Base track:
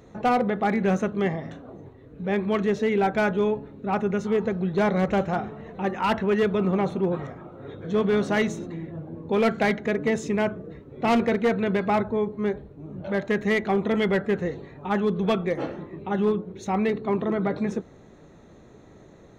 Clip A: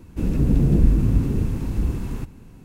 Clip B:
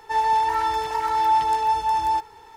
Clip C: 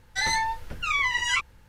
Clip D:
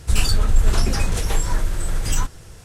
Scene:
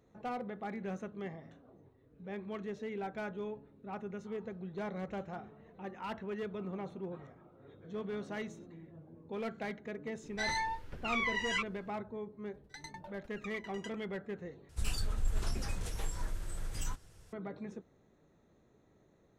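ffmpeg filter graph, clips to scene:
ffmpeg -i bed.wav -i cue0.wav -i cue1.wav -i cue2.wav -i cue3.wav -filter_complex "[3:a]asplit=2[link_01][link_02];[0:a]volume=-17.5dB[link_03];[link_01]highshelf=frequency=6500:gain=-10[link_04];[link_02]aeval=exprs='val(0)*pow(10,-30*if(lt(mod(10*n/s,1),2*abs(10)/1000),1-mod(10*n/s,1)/(2*abs(10)/1000),(mod(10*n/s,1)-2*abs(10)/1000)/(1-2*abs(10)/1000))/20)':channel_layout=same[link_05];[link_03]asplit=2[link_06][link_07];[link_06]atrim=end=14.694[link_08];[4:a]atrim=end=2.64,asetpts=PTS-STARTPTS,volume=-17dB[link_09];[link_07]atrim=start=17.326[link_10];[link_04]atrim=end=1.68,asetpts=PTS-STARTPTS,volume=-8.5dB,afade=type=in:duration=0.004:curve=hsin,afade=type=out:start_time=1.676:duration=0.004:curve=hsin,adelay=10220[link_11];[link_05]atrim=end=1.68,asetpts=PTS-STARTPTS,volume=-16.5dB,afade=type=in:duration=0.004:curve=hsin,afade=type=out:start_time=1.676:duration=0.004:curve=hsin,adelay=12540[link_12];[link_08][link_09]acrossfade=duration=0.004:curve1=hsin:curve2=hsin[link_13];[link_13][link_10]acrossfade=duration=0.004:curve1=hsin:curve2=hsin[link_14];[link_14][link_11][link_12]amix=inputs=3:normalize=0" out.wav

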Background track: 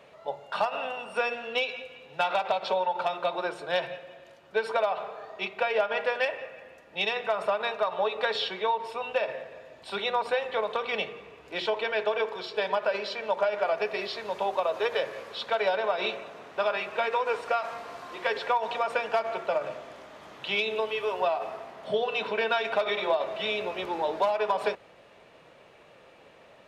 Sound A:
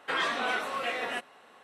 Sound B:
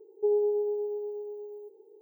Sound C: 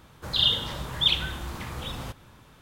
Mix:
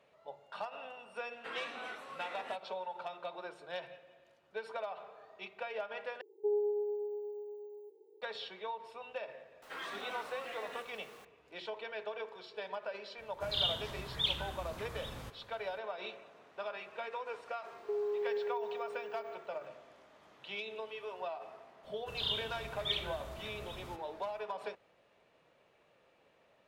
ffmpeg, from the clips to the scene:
ffmpeg -i bed.wav -i cue0.wav -i cue1.wav -i cue2.wav -filter_complex "[1:a]asplit=2[link_01][link_02];[2:a]asplit=2[link_03][link_04];[3:a]asplit=2[link_05][link_06];[0:a]volume=-14dB[link_07];[link_01]highshelf=frequency=10000:gain=-4[link_08];[link_02]aeval=exprs='val(0)+0.5*0.0133*sgn(val(0))':channel_layout=same[link_09];[link_04]acompressor=threshold=-27dB:ratio=6:attack=3.2:release=140:knee=1:detection=peak[link_10];[link_07]asplit=2[link_11][link_12];[link_11]atrim=end=6.214[link_13];[link_03]atrim=end=2.01,asetpts=PTS-STARTPTS,volume=-6.5dB[link_14];[link_12]atrim=start=8.216[link_15];[link_08]atrim=end=1.63,asetpts=PTS-STARTPTS,volume=-14.5dB,afade=type=in:duration=0.004:curve=hsin,afade=type=out:start_time=1.626:duration=0.004:curve=hsin,adelay=1360[link_16];[link_09]atrim=end=1.63,asetpts=PTS-STARTPTS,volume=-15.5dB,afade=type=in:duration=0.004:curve=hsin,afade=type=out:start_time=1.626:duration=0.004:curve=hsin,adelay=424242S[link_17];[link_05]atrim=end=2.61,asetpts=PTS-STARTPTS,volume=-10.5dB,afade=type=in:duration=0.004:curve=hsin,afade=type=out:start_time=2.606:duration=0.004:curve=hsin,adelay=13180[link_18];[link_10]atrim=end=2.01,asetpts=PTS-STARTPTS,volume=-5.5dB,afade=type=in:duration=0.004:curve=hsin,afade=type=out:start_time=2.006:duration=0.004:curve=hsin,adelay=17660[link_19];[link_06]atrim=end=2.61,asetpts=PTS-STARTPTS,volume=-13.5dB,afade=type=in:duration=0.004:curve=hsin,afade=type=out:start_time=2.606:duration=0.004:curve=hsin,adelay=21840[link_20];[link_13][link_14]acrossfade=duration=0.004:curve1=hsin:curve2=hsin[link_21];[link_21][link_15]acrossfade=duration=0.004:curve1=hsin:curve2=hsin[link_22];[link_22][link_16][link_17][link_18][link_19][link_20]amix=inputs=6:normalize=0" out.wav

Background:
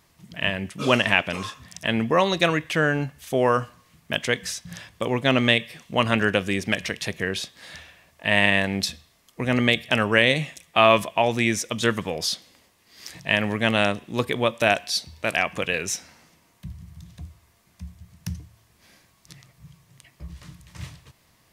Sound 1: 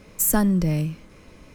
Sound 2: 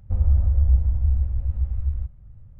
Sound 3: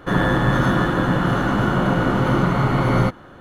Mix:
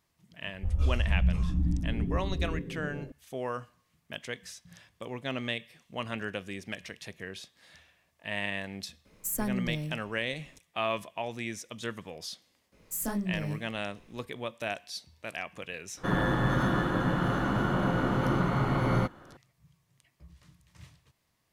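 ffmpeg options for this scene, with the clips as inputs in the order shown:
ffmpeg -i bed.wav -i cue0.wav -i cue1.wav -i cue2.wav -filter_complex "[1:a]asplit=2[link_01][link_02];[0:a]volume=-14.5dB[link_03];[2:a]asplit=7[link_04][link_05][link_06][link_07][link_08][link_09][link_10];[link_05]adelay=427,afreqshift=110,volume=-9dB[link_11];[link_06]adelay=854,afreqshift=220,volume=-15.2dB[link_12];[link_07]adelay=1281,afreqshift=330,volume=-21.4dB[link_13];[link_08]adelay=1708,afreqshift=440,volume=-27.6dB[link_14];[link_09]adelay=2135,afreqshift=550,volume=-33.8dB[link_15];[link_10]adelay=2562,afreqshift=660,volume=-40dB[link_16];[link_04][link_11][link_12][link_13][link_14][link_15][link_16]amix=inputs=7:normalize=0[link_17];[link_02]flanger=delay=16.5:depth=6.1:speed=1.6[link_18];[link_17]atrim=end=2.59,asetpts=PTS-STARTPTS,volume=-8.5dB,afade=type=in:duration=0.004:curve=hsin,afade=type=out:start_time=2.586:duration=0.004:curve=hsin,adelay=530[link_19];[link_01]atrim=end=1.54,asetpts=PTS-STARTPTS,volume=-12dB,afade=type=in:duration=0.004:curve=hsin,afade=type=out:start_time=1.536:duration=0.004:curve=hsin,adelay=9050[link_20];[link_18]atrim=end=1.54,asetpts=PTS-STARTPTS,volume=-9.5dB,afade=type=in:duration=0.004:curve=hsin,afade=type=out:start_time=1.536:duration=0.004:curve=hsin,adelay=12720[link_21];[3:a]atrim=end=3.4,asetpts=PTS-STARTPTS,volume=-9dB,afade=type=in:duration=0.004:curve=hsin,afade=type=out:start_time=3.396:duration=0.004:curve=hsin,adelay=15970[link_22];[link_03][link_19][link_20][link_21][link_22]amix=inputs=5:normalize=0" out.wav

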